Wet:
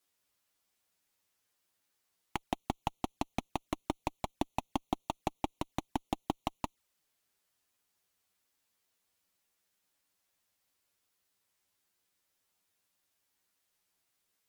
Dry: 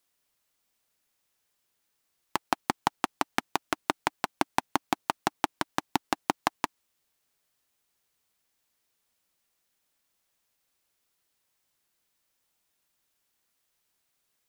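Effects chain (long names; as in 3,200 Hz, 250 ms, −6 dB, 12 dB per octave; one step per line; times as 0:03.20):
tube saturation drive 19 dB, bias 0.35
flanger swept by the level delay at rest 11.1 ms, full sweep at −37 dBFS
level +1.5 dB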